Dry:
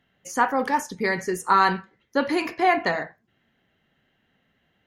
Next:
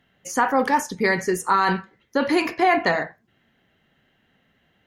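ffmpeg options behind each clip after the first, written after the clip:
-af "alimiter=limit=-13dB:level=0:latency=1:release=24,volume=4dB"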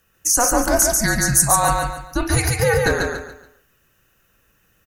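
-af "aexciter=amount=9.6:drive=3.5:freq=5.5k,afreqshift=-230,aecho=1:1:142|284|426|568:0.708|0.227|0.0725|0.0232"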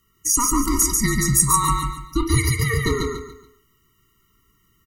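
-af "afftfilt=real='re*eq(mod(floor(b*sr/1024/460),2),0)':imag='im*eq(mod(floor(b*sr/1024/460),2),0)':win_size=1024:overlap=0.75,volume=1dB"

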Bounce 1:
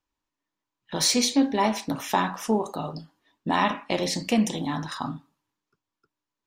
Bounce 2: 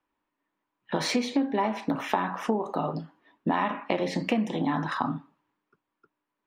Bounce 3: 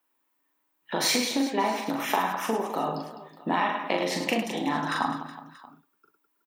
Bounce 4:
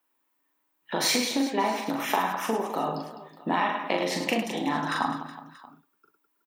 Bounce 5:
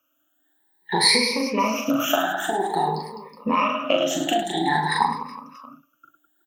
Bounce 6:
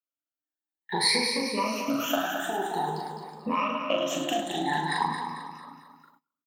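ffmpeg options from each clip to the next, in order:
-filter_complex "[0:a]acrossover=split=150 2800:gain=0.224 1 0.1[a][b][c];[a][b][c]amix=inputs=3:normalize=0,acompressor=threshold=-30dB:ratio=6,volume=7dB"
-af "aemphasis=mode=production:type=bsi,aecho=1:1:40|104|206.4|370.2|632.4:0.631|0.398|0.251|0.158|0.1"
-af anull
-af "afftfilt=real='re*pow(10,24/40*sin(2*PI*(0.88*log(max(b,1)*sr/1024/100)/log(2)-(0.51)*(pts-256)/sr)))':imag='im*pow(10,24/40*sin(2*PI*(0.88*log(max(b,1)*sr/1024/100)/log(2)-(0.51)*(pts-256)/sr)))':win_size=1024:overlap=0.75"
-af "aecho=1:1:223|446|669|892|1115:0.398|0.175|0.0771|0.0339|0.0149,agate=range=-24dB:threshold=-50dB:ratio=16:detection=peak,volume=-6.5dB"

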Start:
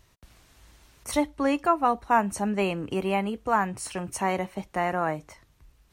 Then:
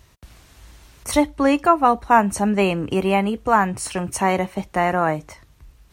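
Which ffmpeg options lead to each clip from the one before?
-af "highpass=43,lowshelf=f=71:g=7.5,volume=7dB"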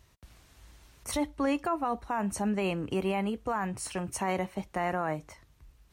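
-af "alimiter=limit=-11.5dB:level=0:latency=1:release=23,volume=-9dB"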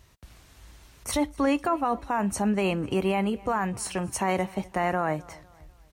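-af "aecho=1:1:251|502|753:0.0708|0.0297|0.0125,volume=4.5dB"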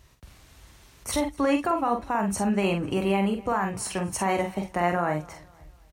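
-filter_complex "[0:a]asplit=2[a][b];[b]adelay=46,volume=-6dB[c];[a][c]amix=inputs=2:normalize=0"

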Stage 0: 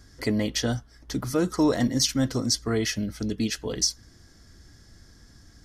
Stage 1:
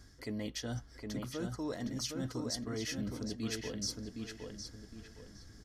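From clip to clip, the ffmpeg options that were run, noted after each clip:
-filter_complex "[0:a]areverse,acompressor=threshold=-32dB:ratio=6,areverse,asplit=2[a][b];[b]adelay=763,lowpass=f=3.5k:p=1,volume=-4dB,asplit=2[c][d];[d]adelay=763,lowpass=f=3.5k:p=1,volume=0.35,asplit=2[e][f];[f]adelay=763,lowpass=f=3.5k:p=1,volume=0.35,asplit=2[g][h];[h]adelay=763,lowpass=f=3.5k:p=1,volume=0.35[i];[a][c][e][g][i]amix=inputs=5:normalize=0,volume=-4.5dB"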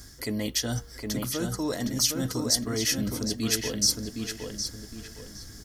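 -af "aemphasis=mode=production:type=50fm,bandreject=f=94.06:t=h:w=4,bandreject=f=188.12:t=h:w=4,bandreject=f=282.18:t=h:w=4,bandreject=f=376.24:t=h:w=4,bandreject=f=470.3:t=h:w=4,bandreject=f=564.36:t=h:w=4,volume=9dB"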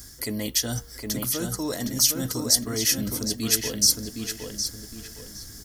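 -af "highshelf=f=7.6k:g=11.5"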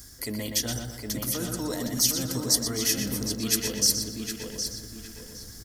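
-filter_complex "[0:a]asplit=2[a][b];[b]adelay=121,lowpass=f=3.7k:p=1,volume=-4dB,asplit=2[c][d];[d]adelay=121,lowpass=f=3.7k:p=1,volume=0.45,asplit=2[e][f];[f]adelay=121,lowpass=f=3.7k:p=1,volume=0.45,asplit=2[g][h];[h]adelay=121,lowpass=f=3.7k:p=1,volume=0.45,asplit=2[i][j];[j]adelay=121,lowpass=f=3.7k:p=1,volume=0.45,asplit=2[k][l];[l]adelay=121,lowpass=f=3.7k:p=1,volume=0.45[m];[a][c][e][g][i][k][m]amix=inputs=7:normalize=0,volume=-3dB"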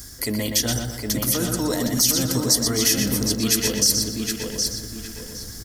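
-af "alimiter=level_in=13dB:limit=-1dB:release=50:level=0:latency=1,volume=-5.5dB"

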